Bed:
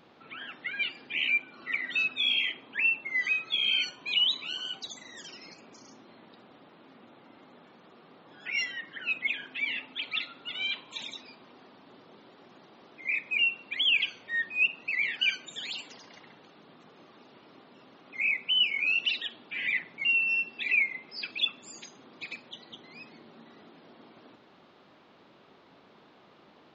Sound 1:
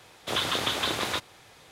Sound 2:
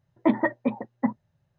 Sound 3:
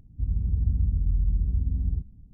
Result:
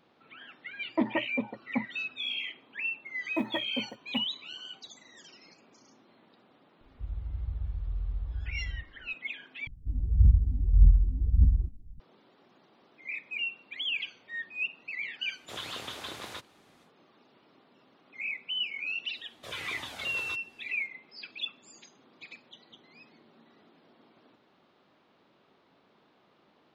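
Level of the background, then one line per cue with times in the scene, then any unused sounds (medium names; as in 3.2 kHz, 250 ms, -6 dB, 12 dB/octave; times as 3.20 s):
bed -7.5 dB
0.72 s: add 2 -6.5 dB
3.11 s: add 2 -10 dB + block-companded coder 7-bit
6.81 s: add 3 -7.5 dB + peaking EQ 230 Hz -13.5 dB 2.1 oct
9.67 s: replace with 3 -4.5 dB + phaser 1.7 Hz, delay 4.1 ms, feedback 78%
15.21 s: add 1 -12.5 dB, fades 0.10 s
19.16 s: add 1 -9 dB + Shepard-style flanger falling 1.6 Hz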